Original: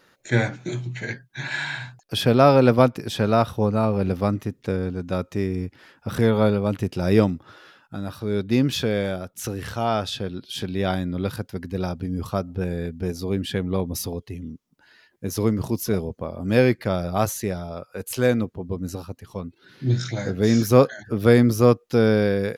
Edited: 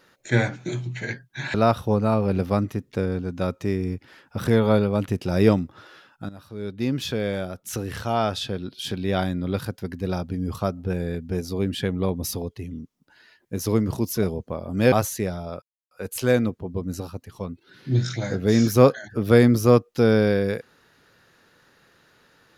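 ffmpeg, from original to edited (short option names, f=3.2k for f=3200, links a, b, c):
-filter_complex "[0:a]asplit=5[a][b][c][d][e];[a]atrim=end=1.542[f];[b]atrim=start=3.248:end=8,asetpts=PTS-STARTPTS,afade=t=out:st=4.748:d=0.004:c=hsin:silence=0.223872[g];[c]atrim=start=8:end=16.632,asetpts=PTS-STARTPTS,afade=t=in:d=1.43:silence=0.223872[h];[d]atrim=start=17.158:end=17.86,asetpts=PTS-STARTPTS,afade=t=out:st=0.698:d=0.004:c=hsin,apad=pad_dur=0.29[i];[e]atrim=start=17.86,asetpts=PTS-STARTPTS,afade=t=in:d=0.004:c=hsin[j];[g][h]concat=n=2:v=0:a=1[k];[f][k]acrossfade=d=0.004:c1=hsin:c2=hsin[l];[i][j]concat=n=2:v=0:a=1[m];[l][m]acrossfade=d=0.004:c1=hsin:c2=hsin"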